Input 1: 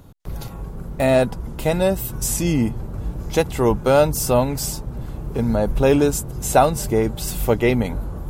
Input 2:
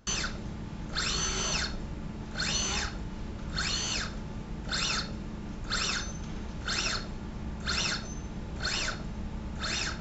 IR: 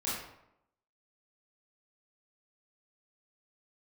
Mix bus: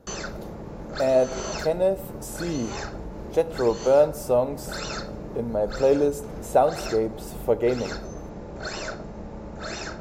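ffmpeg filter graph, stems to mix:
-filter_complex "[0:a]volume=-16dB,asplit=3[link_01][link_02][link_03];[link_02]volume=-17.5dB[link_04];[1:a]equalizer=frequency=3200:width_type=o:width=0.59:gain=-6.5,volume=-3.5dB[link_05];[link_03]apad=whole_len=441195[link_06];[link_05][link_06]sidechaincompress=threshold=-38dB:ratio=8:attack=31:release=202[link_07];[2:a]atrim=start_sample=2205[link_08];[link_04][link_08]afir=irnorm=-1:irlink=0[link_09];[link_01][link_07][link_09]amix=inputs=3:normalize=0,equalizer=frequency=530:width=0.8:gain=14"

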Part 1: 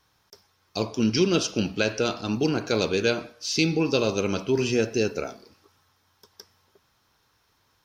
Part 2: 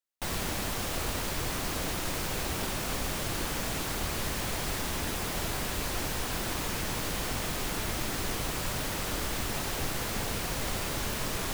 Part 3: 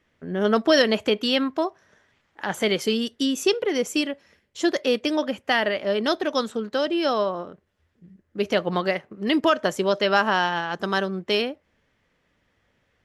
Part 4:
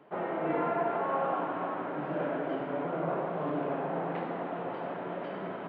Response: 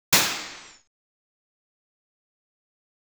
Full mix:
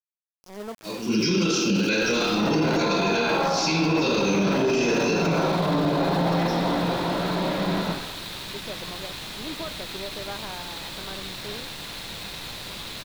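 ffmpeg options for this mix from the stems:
-filter_complex "[0:a]highpass=frequency=160:width=0.5412,highpass=frequency=160:width=1.3066,equalizer=frequency=640:width=5.8:gain=-11,volume=-7.5dB,afade=type=in:start_time=0.88:duration=0.26:silence=0.237137,asplit=3[link_01][link_02][link_03];[link_02]volume=-7.5dB[link_04];[1:a]asoftclip=type=hard:threshold=-35dB,lowpass=frequency=3900:width_type=q:width=4.1,adelay=1800,volume=-3.5dB,asplit=2[link_05][link_06];[link_06]volume=-22.5dB[link_07];[2:a]lowpass=1100,adelay=150,volume=-14.5dB[link_08];[3:a]lowshelf=frequency=130:gain=9,adelay=2150,volume=-8.5dB,asplit=2[link_09][link_10];[link_10]volume=-5dB[link_11];[link_03]apad=whole_len=581725[link_12];[link_08][link_12]sidechaincompress=threshold=-52dB:ratio=8:attack=16:release=390[link_13];[4:a]atrim=start_sample=2205[link_14];[link_04][link_07][link_11]amix=inputs=3:normalize=0[link_15];[link_15][link_14]afir=irnorm=-1:irlink=0[link_16];[link_01][link_05][link_13][link_09][link_16]amix=inputs=5:normalize=0,aeval=exprs='val(0)*gte(abs(val(0)),0.015)':channel_layout=same,alimiter=limit=-14.5dB:level=0:latency=1:release=16"

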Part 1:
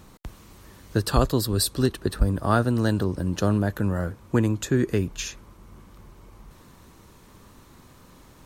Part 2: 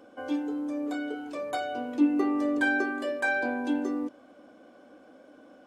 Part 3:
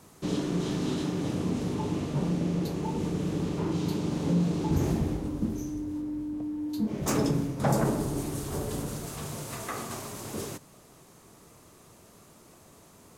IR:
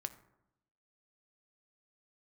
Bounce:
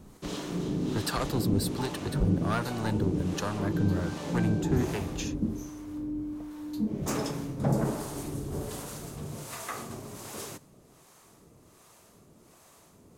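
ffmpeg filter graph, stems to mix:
-filter_complex "[0:a]asoftclip=type=tanh:threshold=-19dB,volume=-1dB[link_01];[1:a]acompressor=threshold=-30dB:ratio=6,adelay=1150,volume=-7dB[link_02];[2:a]volume=0.5dB[link_03];[link_01][link_02][link_03]amix=inputs=3:normalize=0,acrossover=split=560[link_04][link_05];[link_04]aeval=exprs='val(0)*(1-0.7/2+0.7/2*cos(2*PI*1.3*n/s))':channel_layout=same[link_06];[link_05]aeval=exprs='val(0)*(1-0.7/2-0.7/2*cos(2*PI*1.3*n/s))':channel_layout=same[link_07];[link_06][link_07]amix=inputs=2:normalize=0"

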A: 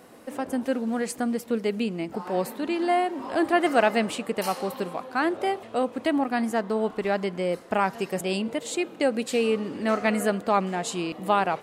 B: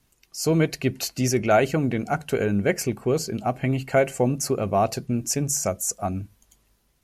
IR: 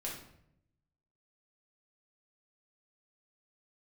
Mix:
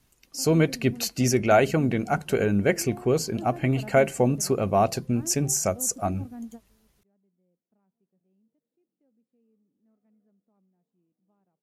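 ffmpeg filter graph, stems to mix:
-filter_complex "[0:a]bandpass=frequency=190:width_type=q:width=1.6:csg=0,volume=-8.5dB[link_01];[1:a]volume=0dB,asplit=2[link_02][link_03];[link_03]apad=whole_len=512561[link_04];[link_01][link_04]sidechaingate=range=-30dB:threshold=-57dB:ratio=16:detection=peak[link_05];[link_05][link_02]amix=inputs=2:normalize=0"

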